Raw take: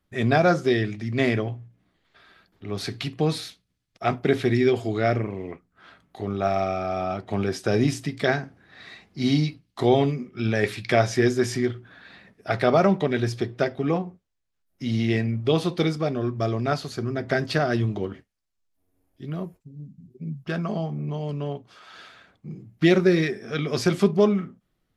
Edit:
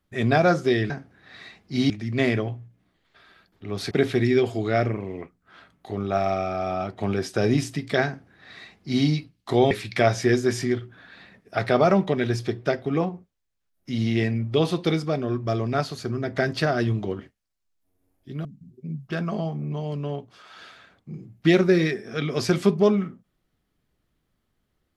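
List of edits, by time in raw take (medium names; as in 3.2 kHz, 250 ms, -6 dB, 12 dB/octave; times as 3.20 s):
2.91–4.21 s: delete
8.36–9.36 s: copy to 0.90 s
10.01–10.64 s: delete
19.38–19.82 s: delete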